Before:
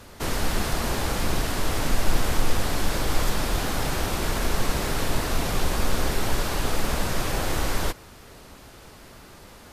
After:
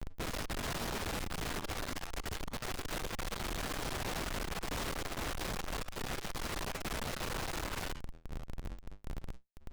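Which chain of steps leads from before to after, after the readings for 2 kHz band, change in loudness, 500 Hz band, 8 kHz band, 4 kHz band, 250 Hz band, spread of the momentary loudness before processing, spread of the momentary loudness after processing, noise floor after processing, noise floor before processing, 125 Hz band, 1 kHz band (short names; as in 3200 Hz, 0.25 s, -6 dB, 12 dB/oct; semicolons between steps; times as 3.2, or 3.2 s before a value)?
-10.5 dB, -12.5 dB, -12.5 dB, -12.0 dB, -10.5 dB, -12.5 dB, 20 LU, 10 LU, -52 dBFS, -47 dBFS, -13.5 dB, -11.5 dB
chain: Schmitt trigger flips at -37 dBFS; flange 0.3 Hz, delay 4.9 ms, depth 8 ms, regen -71%; tube stage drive 44 dB, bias 0.45; gain +7.5 dB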